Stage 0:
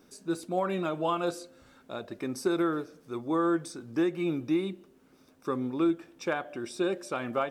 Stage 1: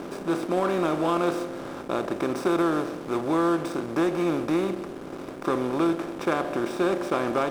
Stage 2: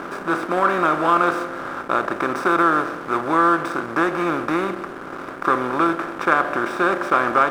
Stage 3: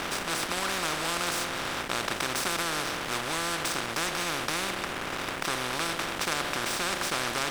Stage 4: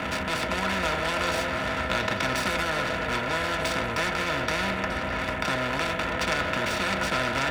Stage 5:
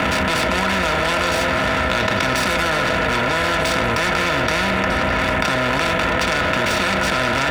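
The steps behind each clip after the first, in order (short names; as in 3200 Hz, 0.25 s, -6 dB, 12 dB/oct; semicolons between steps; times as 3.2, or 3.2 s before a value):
per-bin compression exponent 0.4; backlash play -32 dBFS; ending taper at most 240 dB/s
bell 1400 Hz +15 dB 1.3 oct
spectral compressor 4:1; gain -8.5 dB
Wiener smoothing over 9 samples; delay with a stepping band-pass 0.313 s, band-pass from 590 Hz, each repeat 1.4 oct, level -3 dB; reverb RT60 0.10 s, pre-delay 3 ms, DRR 3 dB; gain -4 dB
fast leveller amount 100%; gain +5 dB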